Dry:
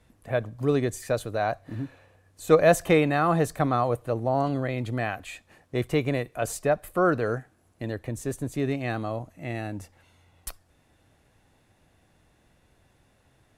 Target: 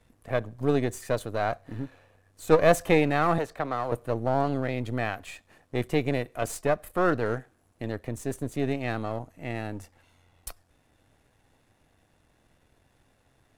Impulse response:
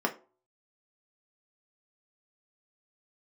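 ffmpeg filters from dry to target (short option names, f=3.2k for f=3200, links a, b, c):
-filter_complex "[0:a]aeval=exprs='if(lt(val(0),0),0.447*val(0),val(0))':c=same,asettb=1/sr,asplit=3[a][b][c];[a]atrim=end=3.384[d];[b]atrim=start=3.38:end=3.92,asetpts=PTS-STARTPTS,afade=t=in:d=0.004:c=qsin,afade=t=out:st=0.536:d=0.004:c=qsin,acrossover=split=350|4900[e][f][g];[e]acompressor=threshold=-39dB:ratio=4[h];[f]acompressor=threshold=-27dB:ratio=4[i];[g]acompressor=threshold=-59dB:ratio=4[j];[h][i][j]amix=inputs=3:normalize=0[k];[c]atrim=start=3.916[l];[d][k]acrossfade=d=0.004:c1=hsin:c2=qsin[m];[m][l]acrossfade=d=0.004:c1=qsin:c2=hsin,asplit=2[n][o];[1:a]atrim=start_sample=2205[p];[o][p]afir=irnorm=-1:irlink=0,volume=-27dB[q];[n][q]amix=inputs=2:normalize=0"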